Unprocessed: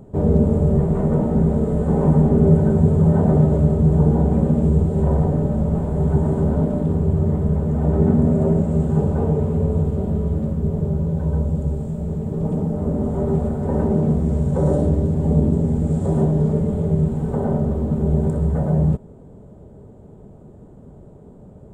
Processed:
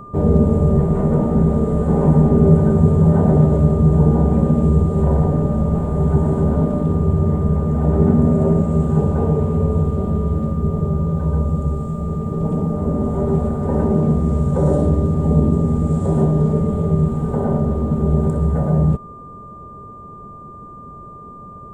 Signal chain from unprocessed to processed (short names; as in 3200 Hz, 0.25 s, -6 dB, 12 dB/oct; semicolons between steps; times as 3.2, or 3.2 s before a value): whine 1200 Hz -38 dBFS; gain +2 dB